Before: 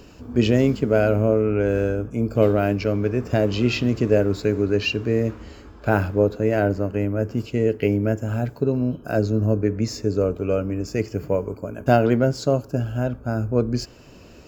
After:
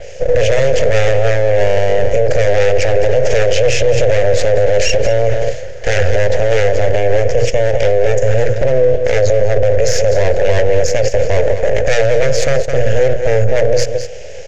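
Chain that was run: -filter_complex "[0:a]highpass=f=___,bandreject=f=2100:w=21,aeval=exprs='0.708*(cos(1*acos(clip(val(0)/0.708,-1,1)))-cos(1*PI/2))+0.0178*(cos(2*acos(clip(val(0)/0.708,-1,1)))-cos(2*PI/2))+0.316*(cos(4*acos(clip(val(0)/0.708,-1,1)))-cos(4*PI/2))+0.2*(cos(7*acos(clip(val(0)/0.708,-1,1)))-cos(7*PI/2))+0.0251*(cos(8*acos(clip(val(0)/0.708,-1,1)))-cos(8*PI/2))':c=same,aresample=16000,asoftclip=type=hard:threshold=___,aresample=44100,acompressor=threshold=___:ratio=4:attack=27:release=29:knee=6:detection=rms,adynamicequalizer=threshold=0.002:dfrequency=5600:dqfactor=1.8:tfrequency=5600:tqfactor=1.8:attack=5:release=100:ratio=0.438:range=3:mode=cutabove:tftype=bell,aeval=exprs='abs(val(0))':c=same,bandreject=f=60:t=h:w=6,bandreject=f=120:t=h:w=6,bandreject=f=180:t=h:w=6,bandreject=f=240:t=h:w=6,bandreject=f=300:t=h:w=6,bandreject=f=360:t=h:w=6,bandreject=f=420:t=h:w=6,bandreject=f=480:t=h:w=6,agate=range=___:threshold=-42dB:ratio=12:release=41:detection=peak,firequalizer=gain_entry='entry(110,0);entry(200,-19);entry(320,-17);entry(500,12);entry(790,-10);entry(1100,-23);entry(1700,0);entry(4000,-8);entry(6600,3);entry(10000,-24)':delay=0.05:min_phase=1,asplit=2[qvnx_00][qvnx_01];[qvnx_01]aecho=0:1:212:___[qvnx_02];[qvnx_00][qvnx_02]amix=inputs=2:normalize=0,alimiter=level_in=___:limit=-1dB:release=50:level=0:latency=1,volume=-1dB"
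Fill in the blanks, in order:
66, -11dB, -31dB, -8dB, 0.211, 27.5dB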